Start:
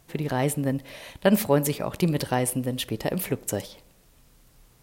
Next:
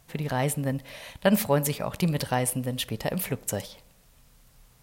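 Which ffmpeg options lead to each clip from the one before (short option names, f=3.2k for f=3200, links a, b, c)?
-af "equalizer=f=340:t=o:w=0.66:g=-8.5"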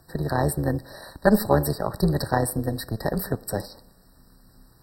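-filter_complex "[0:a]tremolo=f=220:d=0.788,acrossover=split=200|2100[a][b][c];[c]asoftclip=type=tanh:threshold=-26.5dB[d];[a][b][d]amix=inputs=3:normalize=0,afftfilt=real='re*eq(mod(floor(b*sr/1024/1900),2),0)':imag='im*eq(mod(floor(b*sr/1024/1900),2),0)':win_size=1024:overlap=0.75,volume=7dB"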